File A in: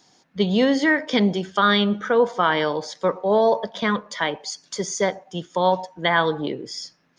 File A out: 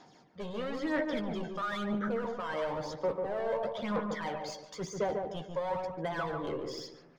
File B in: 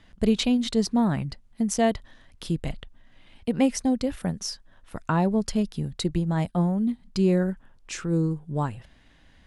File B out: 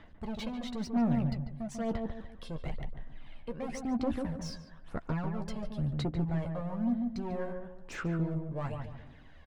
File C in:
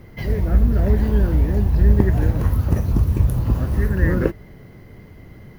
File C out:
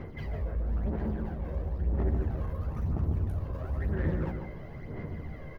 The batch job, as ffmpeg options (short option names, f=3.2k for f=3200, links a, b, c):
-filter_complex "[0:a]areverse,acompressor=threshold=-28dB:ratio=4,areverse,asoftclip=type=hard:threshold=-30dB,asplit=2[a][b];[b]highpass=f=720:p=1,volume=6dB,asoftclip=type=tanh:threshold=-30dB[c];[a][c]amix=inputs=2:normalize=0,lowpass=f=1.1k:p=1,volume=-6dB,aphaser=in_gain=1:out_gain=1:delay=1.9:decay=0.56:speed=1:type=sinusoidal,asplit=2[d][e];[e]adelay=13,volume=-9dB[f];[d][f]amix=inputs=2:normalize=0,asplit=2[g][h];[h]adelay=145,lowpass=f=1k:p=1,volume=-3dB,asplit=2[i][j];[j]adelay=145,lowpass=f=1k:p=1,volume=0.39,asplit=2[k][l];[l]adelay=145,lowpass=f=1k:p=1,volume=0.39,asplit=2[m][n];[n]adelay=145,lowpass=f=1k:p=1,volume=0.39,asplit=2[o][p];[p]adelay=145,lowpass=f=1k:p=1,volume=0.39[q];[g][i][k][m][o][q]amix=inputs=6:normalize=0"